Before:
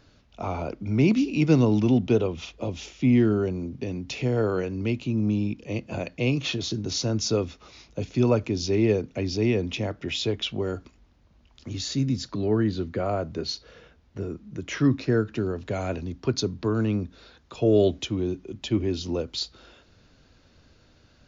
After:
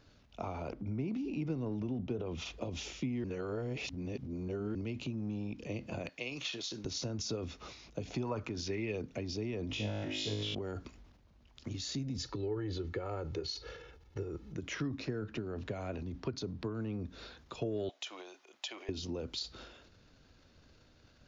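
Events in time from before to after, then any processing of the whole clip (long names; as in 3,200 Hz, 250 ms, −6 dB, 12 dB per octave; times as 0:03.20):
0:00.72–0:02.27: high-shelf EQ 2,200 Hz −11 dB
0:03.24–0:04.75: reverse
0:06.09–0:06.85: high-pass filter 1,200 Hz 6 dB per octave
0:08.06–0:08.97: parametric band 670 Hz → 2,800 Hz +12 dB
0:09.68–0:10.55: flutter between parallel walls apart 3.3 metres, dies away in 0.92 s
0:12.18–0:14.54: comb filter 2.3 ms, depth 78%
0:15.19–0:17.05: high-shelf EQ 5,900 Hz −9 dB
0:17.89–0:18.89: Chebyshev high-pass filter 690 Hz, order 3
whole clip: transient designer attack +5 dB, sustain +9 dB; downward compressor 3 to 1, threshold −30 dBFS; level −7 dB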